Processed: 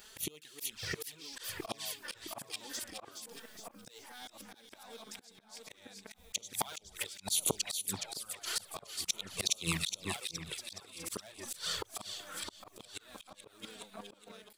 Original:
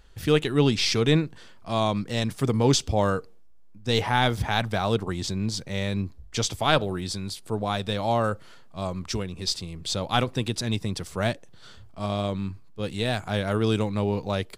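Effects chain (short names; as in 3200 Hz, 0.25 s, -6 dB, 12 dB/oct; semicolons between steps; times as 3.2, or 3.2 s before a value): hard clip -15.5 dBFS, distortion -16 dB; notches 60/120/180/240 Hz; flipped gate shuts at -21 dBFS, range -36 dB; RIAA curve recording; on a send: split-band echo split 2100 Hz, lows 0.663 s, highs 0.418 s, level -5 dB; on the sum: envelope flanger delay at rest 5.5 ms, full sweep at -32.5 dBFS; AGC gain up to 7 dB; auto swell 0.219 s; low shelf 63 Hz -8 dB; gain +6.5 dB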